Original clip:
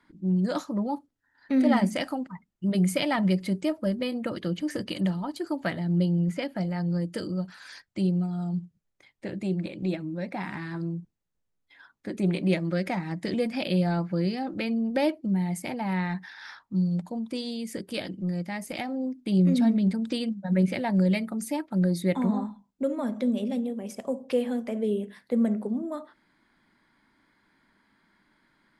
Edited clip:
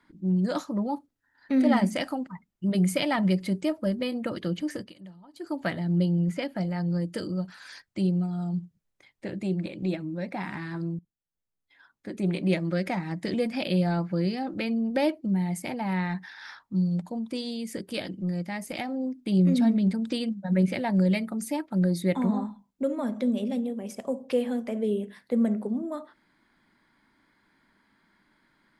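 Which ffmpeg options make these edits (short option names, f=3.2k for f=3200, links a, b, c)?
-filter_complex "[0:a]asplit=4[a][b][c][d];[a]atrim=end=4.93,asetpts=PTS-STARTPTS,afade=t=out:st=4.56:d=0.37:c=qsin:silence=0.105925[e];[b]atrim=start=4.93:end=5.31,asetpts=PTS-STARTPTS,volume=-19.5dB[f];[c]atrim=start=5.31:end=10.99,asetpts=PTS-STARTPTS,afade=t=in:d=0.37:c=qsin:silence=0.105925,afade=t=out:st=5.676:d=0.004:c=hsin:silence=0.149624[g];[d]atrim=start=10.99,asetpts=PTS-STARTPTS,afade=t=in:d=1.6:silence=0.149624[h];[e][f][g][h]concat=n=4:v=0:a=1"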